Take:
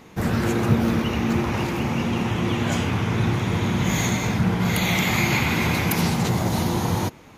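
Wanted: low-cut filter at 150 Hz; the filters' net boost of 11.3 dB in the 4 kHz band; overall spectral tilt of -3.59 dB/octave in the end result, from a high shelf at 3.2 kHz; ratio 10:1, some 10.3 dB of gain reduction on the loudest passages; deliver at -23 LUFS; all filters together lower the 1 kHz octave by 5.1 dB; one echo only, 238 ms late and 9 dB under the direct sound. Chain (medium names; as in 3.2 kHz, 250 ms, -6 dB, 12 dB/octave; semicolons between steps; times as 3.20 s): high-pass 150 Hz; peaking EQ 1 kHz -8 dB; treble shelf 3.2 kHz +8.5 dB; peaking EQ 4 kHz +8.5 dB; compression 10:1, threshold -24 dBFS; delay 238 ms -9 dB; trim +3 dB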